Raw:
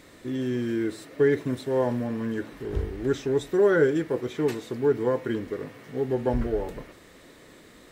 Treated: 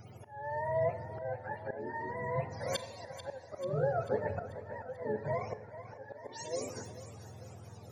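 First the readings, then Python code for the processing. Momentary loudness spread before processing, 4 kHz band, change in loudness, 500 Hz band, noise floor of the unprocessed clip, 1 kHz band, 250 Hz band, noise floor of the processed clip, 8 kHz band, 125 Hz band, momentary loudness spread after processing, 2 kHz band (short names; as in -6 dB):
11 LU, -5.0 dB, -11.0 dB, -11.0 dB, -52 dBFS, -1.5 dB, -19.0 dB, -52 dBFS, n/a, -8.0 dB, 16 LU, -9.5 dB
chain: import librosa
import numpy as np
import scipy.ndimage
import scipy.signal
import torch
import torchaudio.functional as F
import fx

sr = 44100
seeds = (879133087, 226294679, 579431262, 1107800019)

p1 = fx.octave_mirror(x, sr, pivot_hz=470.0)
p2 = fx.high_shelf(p1, sr, hz=6700.0, db=9.5)
p3 = fx.notch(p2, sr, hz=980.0, q=23.0)
p4 = fx.auto_swell(p3, sr, attack_ms=759.0)
p5 = p4 + fx.echo_split(p4, sr, split_hz=480.0, low_ms=158, high_ms=440, feedback_pct=52, wet_db=-12.5, dry=0)
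y = fx.rev_schroeder(p5, sr, rt60_s=0.61, comb_ms=30, drr_db=15.0)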